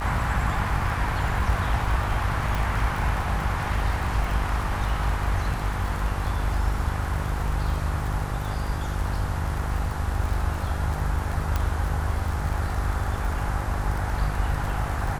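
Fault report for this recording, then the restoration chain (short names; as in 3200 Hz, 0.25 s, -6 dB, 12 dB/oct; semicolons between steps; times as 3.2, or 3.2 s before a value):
buzz 50 Hz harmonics 29 -30 dBFS
crackle 32/s -29 dBFS
2.55 pop
11.56 pop -11 dBFS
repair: de-click; de-hum 50 Hz, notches 29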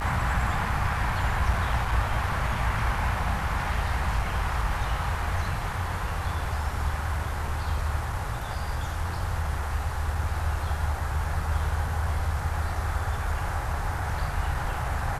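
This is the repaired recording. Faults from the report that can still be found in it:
11.56 pop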